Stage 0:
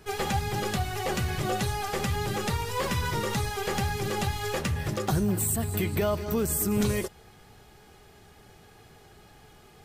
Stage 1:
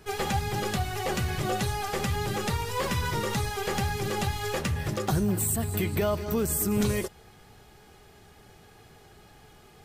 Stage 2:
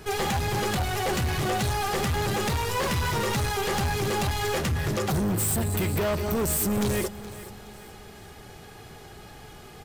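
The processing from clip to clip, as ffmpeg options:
ffmpeg -i in.wav -af anull out.wav
ffmpeg -i in.wav -af "asoftclip=type=tanh:threshold=-31dB,aecho=1:1:421|842|1263|1684:0.158|0.0666|0.028|0.0117,volume=8dB" out.wav

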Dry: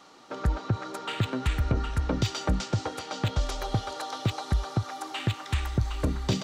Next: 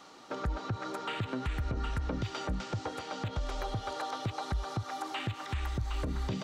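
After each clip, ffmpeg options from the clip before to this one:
ffmpeg -i in.wav -filter_complex "[0:a]acrossover=split=3000[link_01][link_02];[link_02]acompressor=threshold=-46dB:ratio=4:attack=1:release=60[link_03];[link_01][link_03]amix=inputs=2:normalize=0,alimiter=level_in=1dB:limit=-24dB:level=0:latency=1:release=159,volume=-1dB" out.wav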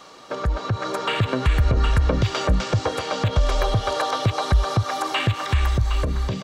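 ffmpeg -i in.wav -af "dynaudnorm=framelen=240:gausssize=7:maxgain=5.5dB,aecho=1:1:1.8:0.38,volume=8dB" out.wav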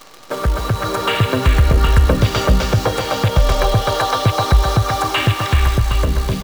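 ffmpeg -i in.wav -af "acrusher=bits=7:dc=4:mix=0:aa=0.000001,aecho=1:1:133|266|399|532|665|798:0.316|0.171|0.0922|0.0498|0.0269|0.0145,volume=5.5dB" out.wav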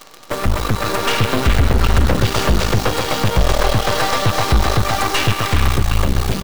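ffmpeg -i in.wav -af "aeval=exprs='0.891*(cos(1*acos(clip(val(0)/0.891,-1,1)))-cos(1*PI/2))+0.178*(cos(8*acos(clip(val(0)/0.891,-1,1)))-cos(8*PI/2))':channel_layout=same,asoftclip=type=tanh:threshold=-5.5dB" out.wav

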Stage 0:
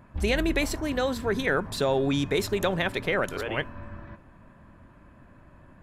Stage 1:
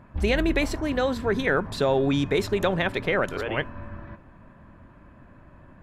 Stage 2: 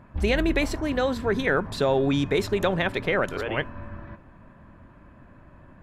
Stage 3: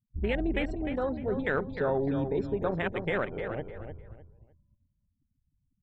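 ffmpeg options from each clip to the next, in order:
ffmpeg -i in.wav -af "highshelf=frequency=5900:gain=-10.5,volume=2.5dB" out.wav
ffmpeg -i in.wav -af anull out.wav
ffmpeg -i in.wav -filter_complex "[0:a]afftfilt=real='re*gte(hypot(re,im),0.0224)':imag='im*gte(hypot(re,im),0.0224)':win_size=1024:overlap=0.75,afwtdn=0.0501,asplit=2[link_01][link_02];[link_02]adelay=303,lowpass=frequency=4200:poles=1,volume=-8dB,asplit=2[link_03][link_04];[link_04]adelay=303,lowpass=frequency=4200:poles=1,volume=0.27,asplit=2[link_05][link_06];[link_06]adelay=303,lowpass=frequency=4200:poles=1,volume=0.27[link_07];[link_01][link_03][link_05][link_07]amix=inputs=4:normalize=0,volume=-6dB" out.wav

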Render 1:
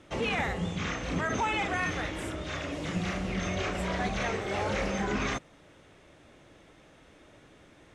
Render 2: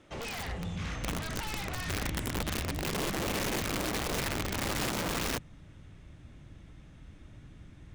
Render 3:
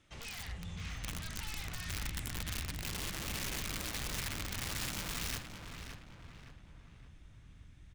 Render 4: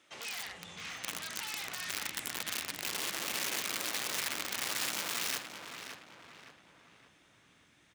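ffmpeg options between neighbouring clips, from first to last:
ffmpeg -i in.wav -af "aeval=exprs='0.141*(cos(1*acos(clip(val(0)/0.141,-1,1)))-cos(1*PI/2))+0.0708*(cos(3*acos(clip(val(0)/0.141,-1,1)))-cos(3*PI/2))':channel_layout=same,asubboost=boost=9.5:cutoff=160,aeval=exprs='(mod(29.9*val(0)+1,2)-1)/29.9':channel_layout=same,volume=2dB" out.wav
ffmpeg -i in.wav -filter_complex "[0:a]equalizer=frequency=470:width_type=o:width=2.9:gain=-13,asplit=2[link_01][link_02];[link_02]adelay=567,lowpass=frequency=3100:poles=1,volume=-6.5dB,asplit=2[link_03][link_04];[link_04]adelay=567,lowpass=frequency=3100:poles=1,volume=0.46,asplit=2[link_05][link_06];[link_06]adelay=567,lowpass=frequency=3100:poles=1,volume=0.46,asplit=2[link_07][link_08];[link_08]adelay=567,lowpass=frequency=3100:poles=1,volume=0.46,asplit=2[link_09][link_10];[link_10]adelay=567,lowpass=frequency=3100:poles=1,volume=0.46[link_11];[link_03][link_05][link_07][link_09][link_11]amix=inputs=5:normalize=0[link_12];[link_01][link_12]amix=inputs=2:normalize=0,volume=-3dB" out.wav
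ffmpeg -i in.wav -af "highpass=370,volume=5dB" out.wav

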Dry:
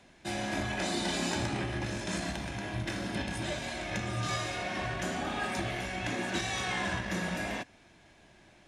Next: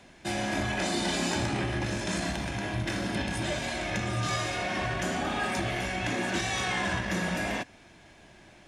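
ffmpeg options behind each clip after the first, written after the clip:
ffmpeg -i in.wav -filter_complex "[0:a]bandreject=frequency=3900:width=30,asplit=2[link_01][link_02];[link_02]alimiter=level_in=4.5dB:limit=-24dB:level=0:latency=1,volume=-4.5dB,volume=-2dB[link_03];[link_01][link_03]amix=inputs=2:normalize=0" out.wav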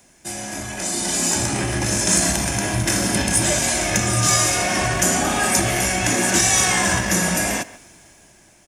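ffmpeg -i in.wav -filter_complex "[0:a]asplit=2[link_01][link_02];[link_02]adelay=140,highpass=300,lowpass=3400,asoftclip=type=hard:threshold=-26.5dB,volume=-16dB[link_03];[link_01][link_03]amix=inputs=2:normalize=0,dynaudnorm=framelen=220:gausssize=13:maxgain=12dB,aexciter=amount=5.4:drive=6.1:freq=5500,volume=-2.5dB" out.wav

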